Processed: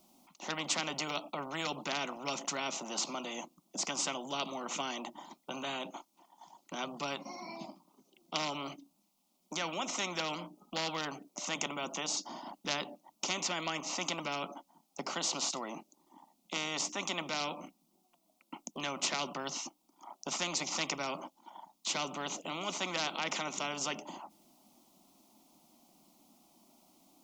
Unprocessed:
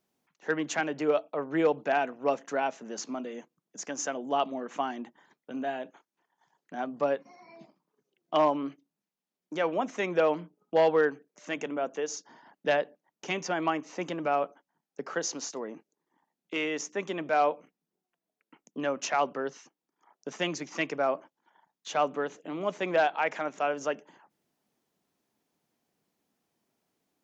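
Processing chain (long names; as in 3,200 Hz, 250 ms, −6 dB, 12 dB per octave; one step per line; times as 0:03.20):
phaser with its sweep stopped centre 450 Hz, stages 6
every bin compressed towards the loudest bin 4 to 1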